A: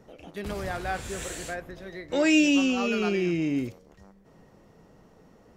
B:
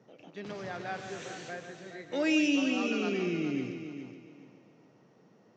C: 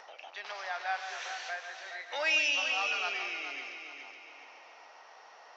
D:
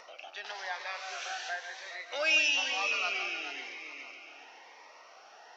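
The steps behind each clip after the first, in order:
Chebyshev band-pass 120–6300 Hz, order 4; multi-head echo 0.14 s, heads first and third, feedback 41%, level -10 dB; gain -6 dB
Chebyshev band-pass 760–5600 Hz, order 3; in parallel at -1 dB: upward compressor, threshold -39 dBFS
cascading phaser rising 1 Hz; gain +3 dB

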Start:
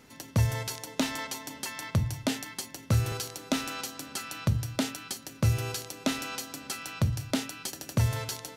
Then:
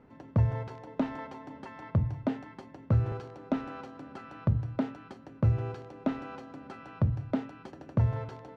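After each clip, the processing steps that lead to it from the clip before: LPF 1100 Hz 12 dB/oct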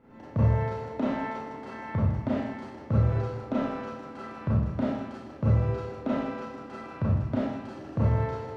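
Schroeder reverb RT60 0.81 s, combs from 28 ms, DRR -7.5 dB; warbling echo 0.152 s, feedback 59%, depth 126 cents, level -18.5 dB; gain -3.5 dB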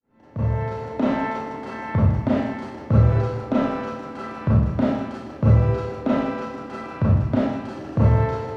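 opening faded in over 1.12 s; gain +7.5 dB

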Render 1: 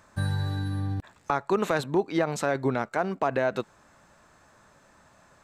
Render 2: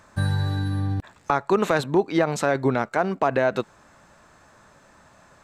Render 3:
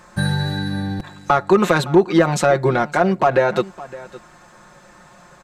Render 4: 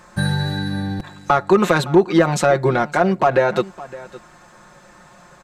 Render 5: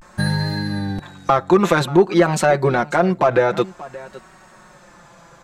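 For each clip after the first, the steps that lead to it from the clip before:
high shelf 10000 Hz -3.5 dB; gain +4.5 dB
comb 5.6 ms, depth 77%; in parallel at -5.5 dB: soft clip -18 dBFS, distortion -9 dB; on the sum: echo 0.562 s -18.5 dB; gain +1.5 dB
nothing audible
vibrato 0.52 Hz 81 cents

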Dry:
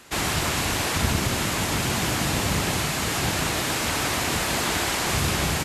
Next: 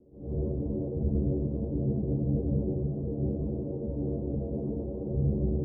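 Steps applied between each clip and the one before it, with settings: elliptic low-pass 510 Hz, stop band 70 dB; metallic resonator 68 Hz, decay 0.29 s, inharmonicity 0.008; attack slew limiter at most 110 dB/s; gain +7 dB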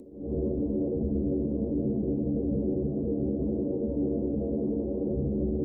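upward compressor, threshold -47 dBFS; graphic EQ 125/250/500 Hz -7/+9/+4 dB; limiter -20.5 dBFS, peak gain reduction 6 dB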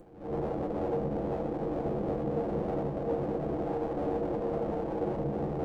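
minimum comb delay 6 ms; dynamic EQ 660 Hz, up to +6 dB, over -46 dBFS, Q 1; reverb, pre-delay 3 ms, DRR 7 dB; gain -4 dB

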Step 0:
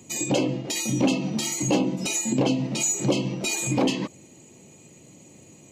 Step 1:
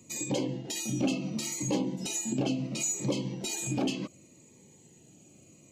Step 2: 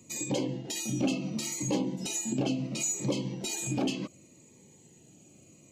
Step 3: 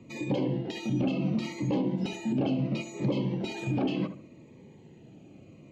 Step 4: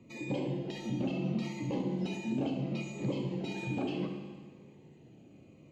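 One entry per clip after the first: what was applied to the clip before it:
cascading phaser falling 0.7 Hz; gain -6.5 dB
nothing audible
limiter -26 dBFS, peak gain reduction 8 dB; air absorption 340 m; darkening echo 71 ms, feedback 34%, low-pass 2000 Hz, level -10 dB; gain +7 dB
Schroeder reverb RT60 1.6 s, combs from 25 ms, DRR 4.5 dB; gain -6 dB

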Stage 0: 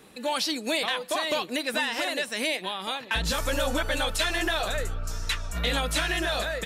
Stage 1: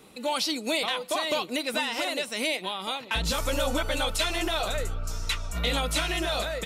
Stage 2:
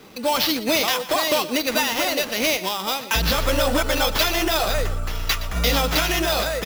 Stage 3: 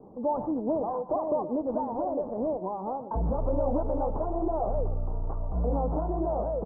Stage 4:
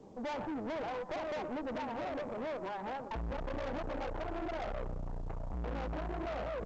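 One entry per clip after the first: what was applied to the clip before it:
notch 1700 Hz, Q 5.6
sample-rate reducer 8600 Hz, jitter 0%; echo 0.119 s -15 dB; gain +7 dB
steep low-pass 950 Hz 48 dB/oct; in parallel at -1.5 dB: limiter -21 dBFS, peak gain reduction 11.5 dB; on the sum: gain -8 dB
tube stage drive 36 dB, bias 0.75; A-law 128 kbps 16000 Hz

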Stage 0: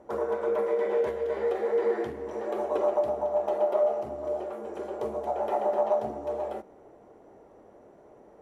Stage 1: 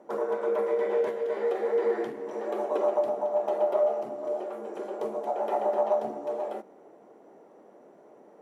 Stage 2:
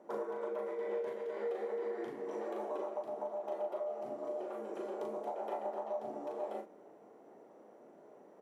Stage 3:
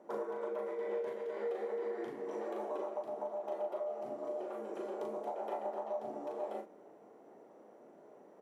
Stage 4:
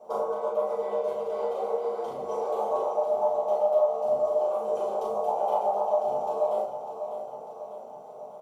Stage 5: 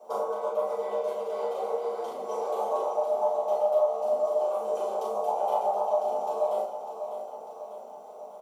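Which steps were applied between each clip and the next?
HPF 170 Hz 24 dB/oct
compressor, threshold -31 dBFS, peak gain reduction 10.5 dB; doubler 38 ms -4.5 dB; gain -5.5 dB
nothing audible
fixed phaser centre 740 Hz, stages 4; on a send: feedback echo 0.598 s, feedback 57%, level -9.5 dB; on the sum: shoebox room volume 130 m³, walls furnished, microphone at 3.7 m; gain +4.5 dB
steep high-pass 180 Hz 36 dB/oct; tilt +1.5 dB/oct

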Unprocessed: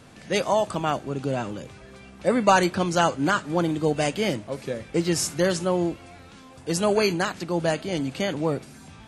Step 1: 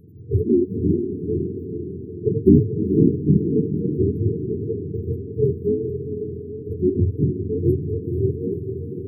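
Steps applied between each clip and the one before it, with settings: spectrum mirrored in octaves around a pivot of 480 Hz; FFT band-reject 470–11000 Hz; diffused feedback echo 0.473 s, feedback 58%, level -7 dB; gain +5.5 dB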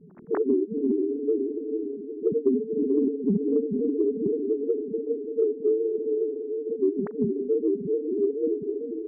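sine-wave speech; compressor 6:1, threshold -20 dBFS, peak gain reduction 12.5 dB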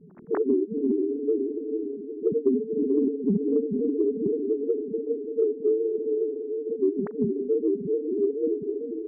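nothing audible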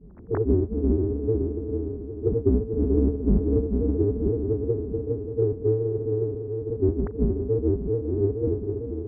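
octaver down 2 oct, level +3 dB; air absorption 310 m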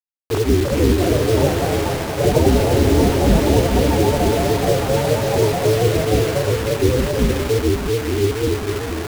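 in parallel at -11 dB: one-sided clip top -24 dBFS; on the sum: bit-crush 5-bit; echoes that change speed 0.406 s, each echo +4 st, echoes 3; gain +3.5 dB

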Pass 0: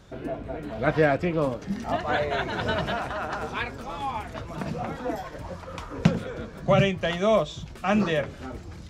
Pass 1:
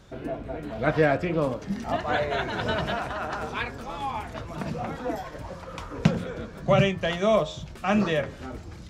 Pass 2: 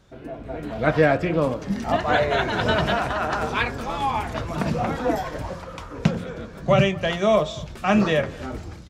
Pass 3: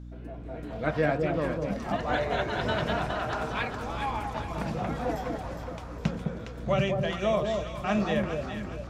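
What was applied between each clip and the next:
de-hum 88.83 Hz, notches 21
AGC gain up to 12.5 dB; outdoor echo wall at 39 m, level -22 dB; gain -4.5 dB
echo with dull and thin repeats by turns 0.206 s, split 920 Hz, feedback 64%, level -3.5 dB; hum 60 Hz, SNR 12 dB; gain -8.5 dB

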